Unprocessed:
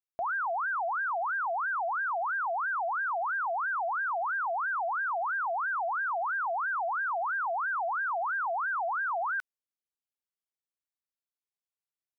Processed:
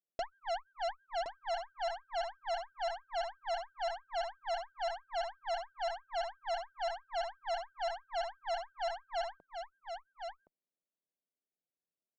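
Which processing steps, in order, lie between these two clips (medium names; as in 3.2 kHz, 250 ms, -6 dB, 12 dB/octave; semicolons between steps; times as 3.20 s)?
elliptic band-pass 160–650 Hz, stop band 40 dB; in parallel at -2.5 dB: compression 6:1, threshold -42 dBFS, peak gain reduction 9 dB; on the sum: saturation -30.5 dBFS, distortion -18 dB; Chebyshev shaper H 6 -12 dB, 7 -39 dB, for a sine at -31 dBFS; delay 1068 ms -7 dB; trim +1 dB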